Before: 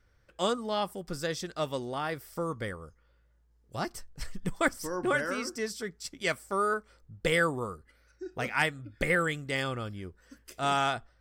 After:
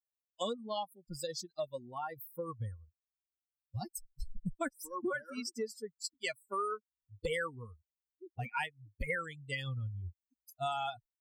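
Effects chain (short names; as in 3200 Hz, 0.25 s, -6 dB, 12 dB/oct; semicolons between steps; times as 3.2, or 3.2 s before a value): per-bin expansion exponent 3; bell 5900 Hz -7 dB 0.41 oct; compressor 4:1, threshold -47 dBFS, peak gain reduction 17 dB; gain +11 dB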